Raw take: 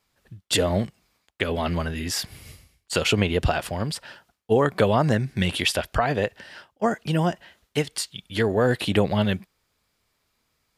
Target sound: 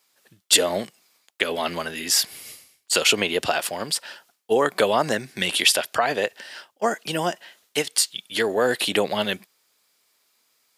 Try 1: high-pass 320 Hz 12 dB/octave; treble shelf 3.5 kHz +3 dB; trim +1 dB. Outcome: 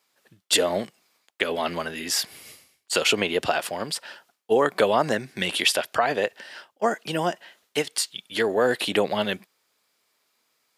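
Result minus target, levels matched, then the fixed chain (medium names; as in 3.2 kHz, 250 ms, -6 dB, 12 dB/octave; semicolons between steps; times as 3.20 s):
8 kHz band -4.0 dB
high-pass 320 Hz 12 dB/octave; treble shelf 3.5 kHz +10 dB; trim +1 dB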